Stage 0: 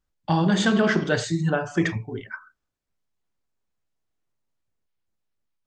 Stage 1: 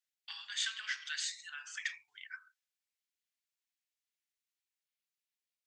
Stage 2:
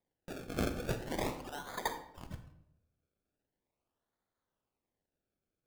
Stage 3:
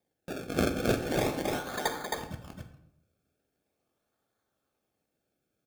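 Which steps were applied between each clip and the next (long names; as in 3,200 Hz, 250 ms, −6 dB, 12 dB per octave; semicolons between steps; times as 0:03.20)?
downward compressor 3 to 1, threshold −23 dBFS, peak gain reduction 6 dB; inverse Chebyshev high-pass filter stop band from 560 Hz, stop band 60 dB; level −2 dB
sample-and-hold swept by an LFO 31×, swing 100% 0.41 Hz; convolution reverb RT60 0.75 s, pre-delay 39 ms, DRR 9.5 dB; level +2.5 dB
notch comb filter 970 Hz; single-tap delay 267 ms −3 dB; level +7 dB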